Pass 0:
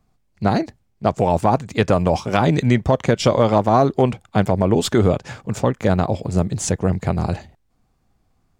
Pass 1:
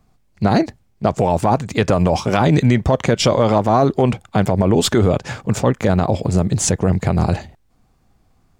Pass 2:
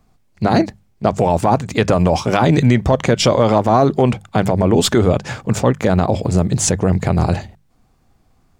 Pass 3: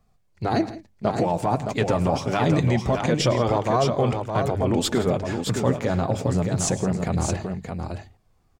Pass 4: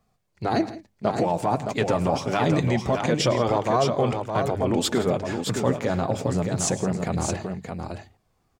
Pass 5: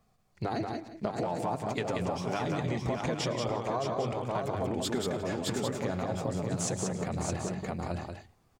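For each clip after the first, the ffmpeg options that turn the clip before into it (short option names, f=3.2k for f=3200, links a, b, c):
-af "alimiter=level_in=10dB:limit=-1dB:release=50:level=0:latency=1,volume=-4dB"
-af "bandreject=f=50:t=h:w=6,bandreject=f=100:t=h:w=6,bandreject=f=150:t=h:w=6,bandreject=f=200:t=h:w=6,volume=1.5dB"
-filter_complex "[0:a]flanger=delay=1.6:depth=5.9:regen=-40:speed=0.25:shape=sinusoidal,asplit=2[a][b];[b]aecho=0:1:108|167|617:0.126|0.133|0.501[c];[a][c]amix=inputs=2:normalize=0,volume=-4.5dB"
-af "lowshelf=f=77:g=-11.5"
-filter_complex "[0:a]acompressor=threshold=-30dB:ratio=6,asplit=2[a][b];[b]aecho=0:1:184:0.596[c];[a][c]amix=inputs=2:normalize=0"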